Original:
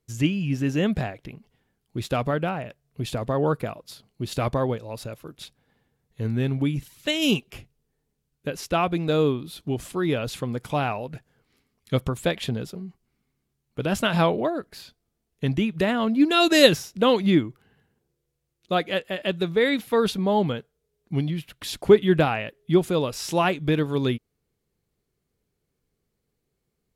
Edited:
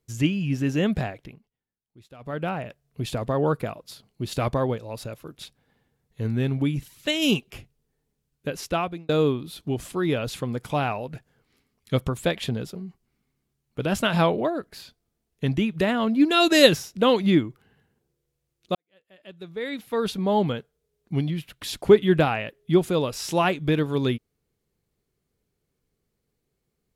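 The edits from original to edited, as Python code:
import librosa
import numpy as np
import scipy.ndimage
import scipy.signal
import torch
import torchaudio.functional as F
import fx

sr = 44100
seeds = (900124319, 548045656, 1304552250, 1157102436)

y = fx.edit(x, sr, fx.fade_down_up(start_s=1.16, length_s=1.37, db=-22.0, fade_s=0.34),
    fx.fade_out_span(start_s=8.67, length_s=0.42),
    fx.fade_in_span(start_s=18.75, length_s=1.59, curve='qua'), tone=tone)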